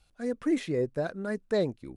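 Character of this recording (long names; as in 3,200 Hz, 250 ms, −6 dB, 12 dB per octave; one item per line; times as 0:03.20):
background noise floor −67 dBFS
spectral slope −6.0 dB per octave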